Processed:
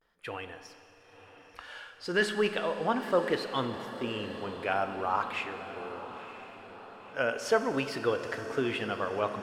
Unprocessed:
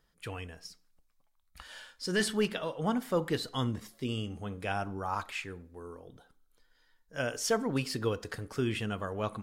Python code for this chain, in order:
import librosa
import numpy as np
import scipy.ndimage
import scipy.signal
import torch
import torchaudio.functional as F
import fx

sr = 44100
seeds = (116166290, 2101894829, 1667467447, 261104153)

y = fx.bass_treble(x, sr, bass_db=-14, treble_db=-14)
y = fx.vibrato(y, sr, rate_hz=0.39, depth_cents=59.0)
y = fx.echo_diffused(y, sr, ms=985, feedback_pct=54, wet_db=-13.0)
y = fx.rev_schroeder(y, sr, rt60_s=2.8, comb_ms=30, drr_db=9.0)
y = F.gain(torch.from_numpy(y), 5.0).numpy()